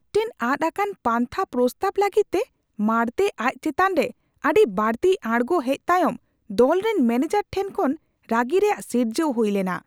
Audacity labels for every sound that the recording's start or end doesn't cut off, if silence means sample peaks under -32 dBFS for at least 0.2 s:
2.790000	4.100000	sound
4.440000	6.160000	sound
6.500000	7.950000	sound